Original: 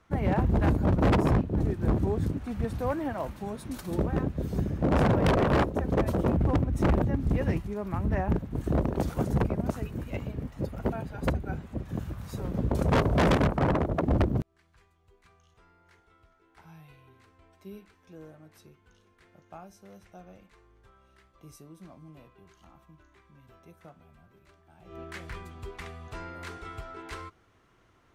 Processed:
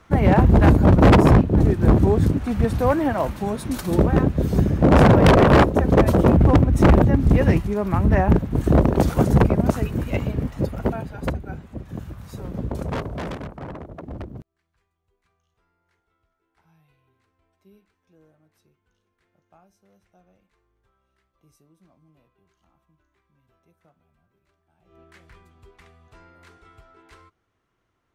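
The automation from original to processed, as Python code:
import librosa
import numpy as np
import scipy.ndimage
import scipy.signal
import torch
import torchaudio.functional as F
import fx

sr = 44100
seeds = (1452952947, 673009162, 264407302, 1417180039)

y = fx.gain(x, sr, db=fx.line((10.47, 10.5), (11.45, 0.5), (12.63, 0.5), (13.4, -10.0)))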